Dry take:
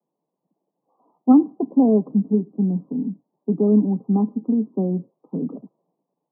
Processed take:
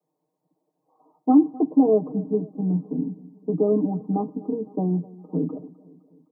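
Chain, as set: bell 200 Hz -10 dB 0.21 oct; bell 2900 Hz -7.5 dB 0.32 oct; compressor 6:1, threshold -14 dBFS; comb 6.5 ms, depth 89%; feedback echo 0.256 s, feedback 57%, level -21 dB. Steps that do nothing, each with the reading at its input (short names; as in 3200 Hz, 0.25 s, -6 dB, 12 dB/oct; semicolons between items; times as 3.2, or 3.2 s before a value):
bell 2900 Hz: input band ends at 850 Hz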